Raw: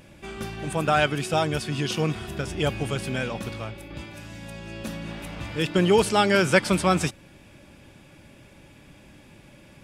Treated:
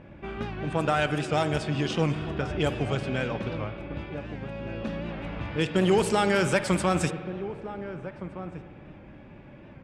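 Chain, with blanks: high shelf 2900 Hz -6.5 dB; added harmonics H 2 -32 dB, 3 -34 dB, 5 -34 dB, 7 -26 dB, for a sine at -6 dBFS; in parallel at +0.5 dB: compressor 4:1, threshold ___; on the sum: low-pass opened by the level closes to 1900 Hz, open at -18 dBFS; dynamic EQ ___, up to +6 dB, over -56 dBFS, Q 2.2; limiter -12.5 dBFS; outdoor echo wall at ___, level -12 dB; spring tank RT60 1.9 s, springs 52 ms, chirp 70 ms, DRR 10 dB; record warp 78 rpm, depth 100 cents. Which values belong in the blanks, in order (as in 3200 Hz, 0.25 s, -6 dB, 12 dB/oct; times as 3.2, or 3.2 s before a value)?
-39 dBFS, 8000 Hz, 260 m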